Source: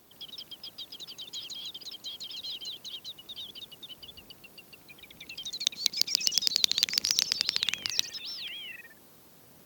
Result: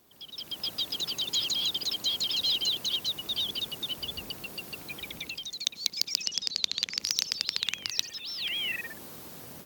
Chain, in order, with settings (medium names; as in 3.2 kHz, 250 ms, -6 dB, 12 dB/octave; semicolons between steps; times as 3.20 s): level rider gain up to 15 dB; 6.22–7.00 s: distance through air 52 m; trim -4 dB